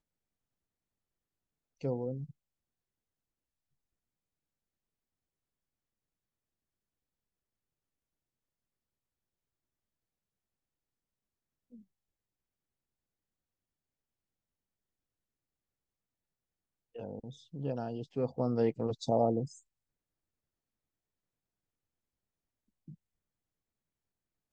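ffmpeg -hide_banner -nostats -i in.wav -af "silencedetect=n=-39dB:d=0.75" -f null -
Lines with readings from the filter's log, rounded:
silence_start: 0.00
silence_end: 1.84 | silence_duration: 1.84
silence_start: 2.24
silence_end: 16.96 | silence_duration: 14.72
silence_start: 19.46
silence_end: 24.53 | silence_duration: 5.07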